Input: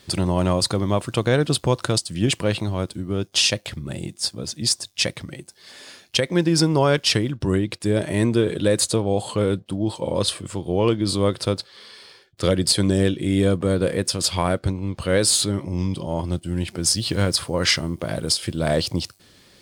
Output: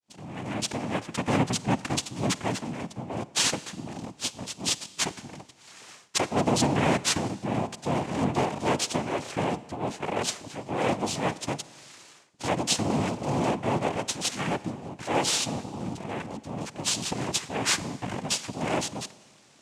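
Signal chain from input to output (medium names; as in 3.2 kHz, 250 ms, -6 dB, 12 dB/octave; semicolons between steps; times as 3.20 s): fade-in on the opening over 0.88 s; half-wave rectifier; noise-vocoded speech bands 4; on a send: reverberation RT60 1.4 s, pre-delay 37 ms, DRR 17 dB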